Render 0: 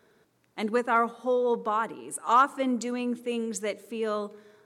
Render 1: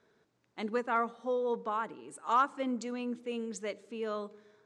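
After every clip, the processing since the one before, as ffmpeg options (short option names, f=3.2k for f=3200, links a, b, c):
-af "lowpass=f=7.5k:w=0.5412,lowpass=f=7.5k:w=1.3066,volume=-6.5dB"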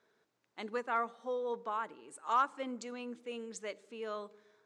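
-af "lowshelf=f=260:g=-11.5,volume=-2dB"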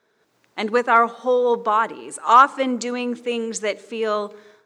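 -af "dynaudnorm=f=180:g=3:m=12dB,volume=6dB"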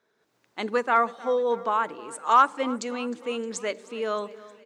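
-af "aecho=1:1:310|620|930|1240|1550:0.1|0.057|0.0325|0.0185|0.0106,volume=-6dB"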